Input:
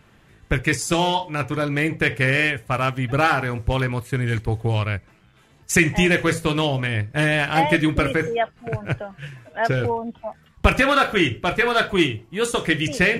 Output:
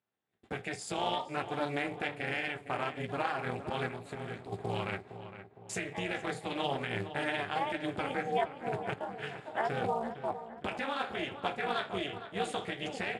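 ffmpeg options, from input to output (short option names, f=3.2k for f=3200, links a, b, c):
-filter_complex "[0:a]agate=range=-28dB:threshold=-47dB:ratio=16:detection=peak,dynaudnorm=f=150:g=7:m=11.5dB,alimiter=limit=-17dB:level=0:latency=1:release=471,asettb=1/sr,asplit=3[a][b][c];[a]atrim=end=3.874[d];[b]atrim=start=3.87:end=4.52,asetpts=PTS-STARTPTS,afade=t=in:d=0.004:c=qsin,afade=t=out:st=0.646:d=0.004:c=qsin,acompressor=threshold=-30dB:ratio=6[e];[c]atrim=start=4.516[f];[d][e]acrossfade=d=0.004:c1=hsin:c2=qsin[g];[g][f]acrossfade=d=0.004:c1=qsin:c2=hsin,flanger=delay=8.2:depth=9.2:regen=-35:speed=1.3:shape=triangular,tremolo=f=290:d=0.947,acrusher=bits=6:mode=log:mix=0:aa=0.000001,highpass=140,equalizer=f=150:t=q:w=4:g=-5,equalizer=f=760:t=q:w=4:g=7,equalizer=f=3.6k:t=q:w=4:g=4,equalizer=f=6k:t=q:w=4:g=-10,lowpass=f=8.9k:w=0.5412,lowpass=f=8.9k:w=1.3066,asplit=2[h][i];[i]adelay=461,lowpass=f=2.3k:p=1,volume=-11dB,asplit=2[j][k];[k]adelay=461,lowpass=f=2.3k:p=1,volume=0.47,asplit=2[l][m];[m]adelay=461,lowpass=f=2.3k:p=1,volume=0.47,asplit=2[n][o];[o]adelay=461,lowpass=f=2.3k:p=1,volume=0.47,asplit=2[p][q];[q]adelay=461,lowpass=f=2.3k:p=1,volume=0.47[r];[h][j][l][n][p][r]amix=inputs=6:normalize=0"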